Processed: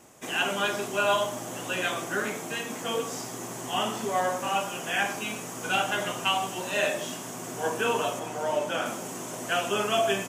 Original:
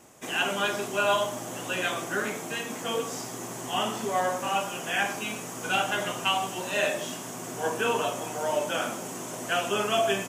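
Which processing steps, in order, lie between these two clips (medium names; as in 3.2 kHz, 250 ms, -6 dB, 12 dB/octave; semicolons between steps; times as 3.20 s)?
8.19–8.86 s: treble shelf 5.9 kHz -7 dB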